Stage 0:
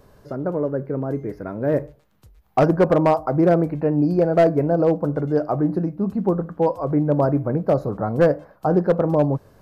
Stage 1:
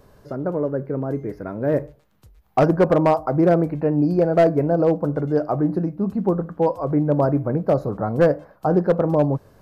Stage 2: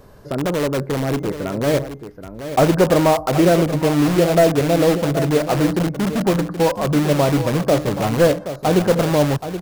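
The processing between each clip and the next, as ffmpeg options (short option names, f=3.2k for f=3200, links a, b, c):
-af anull
-filter_complex "[0:a]asplit=2[a][b];[b]aeval=exprs='(mod(10*val(0)+1,2)-1)/10':c=same,volume=-5dB[c];[a][c]amix=inputs=2:normalize=0,aecho=1:1:776:0.282,volume=2dB"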